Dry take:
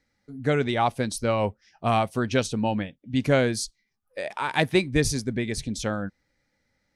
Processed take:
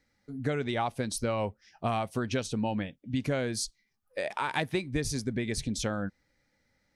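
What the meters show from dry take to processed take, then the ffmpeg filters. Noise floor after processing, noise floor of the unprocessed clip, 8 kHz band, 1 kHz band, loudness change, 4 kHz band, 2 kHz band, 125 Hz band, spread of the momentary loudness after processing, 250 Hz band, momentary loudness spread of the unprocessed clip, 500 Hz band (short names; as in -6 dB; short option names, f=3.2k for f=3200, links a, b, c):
-75 dBFS, -75 dBFS, -3.5 dB, -6.5 dB, -6.5 dB, -5.5 dB, -6.5 dB, -6.0 dB, 6 LU, -5.5 dB, 10 LU, -7.5 dB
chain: -af "acompressor=threshold=-27dB:ratio=5"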